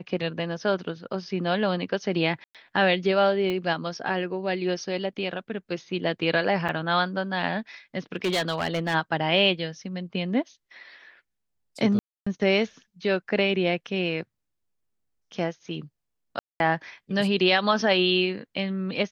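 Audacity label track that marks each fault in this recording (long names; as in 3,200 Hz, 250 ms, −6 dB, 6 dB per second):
2.440000	2.550000	drop-out 107 ms
3.500000	3.500000	click −17 dBFS
6.680000	6.690000	drop-out 6.7 ms
8.160000	8.950000	clipping −21 dBFS
11.990000	12.270000	drop-out 275 ms
16.390000	16.600000	drop-out 211 ms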